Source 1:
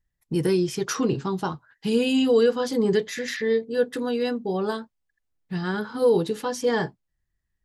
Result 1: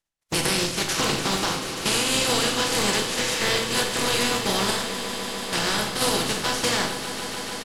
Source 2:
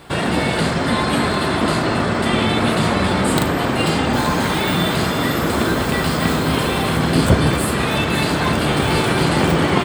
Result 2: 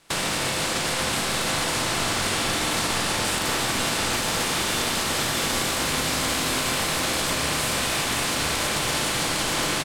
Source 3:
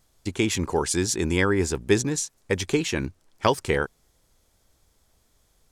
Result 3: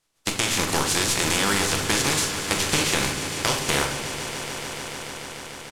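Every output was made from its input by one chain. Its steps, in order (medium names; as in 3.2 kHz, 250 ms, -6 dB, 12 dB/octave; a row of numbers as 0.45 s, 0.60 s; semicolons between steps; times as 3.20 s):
spectral contrast reduction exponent 0.28; gate -33 dBFS, range -15 dB; low-pass 10 kHz 12 dB/octave; peak limiter -10.5 dBFS; compression 5:1, threshold -25 dBFS; doubling 42 ms -11.5 dB; on a send: echo with a slow build-up 147 ms, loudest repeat 5, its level -14.5 dB; on the sum: simulated room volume 270 m³, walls mixed, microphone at 0.73 m; normalise loudness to -23 LUFS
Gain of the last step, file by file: +3.0 dB, 0.0 dB, +5.0 dB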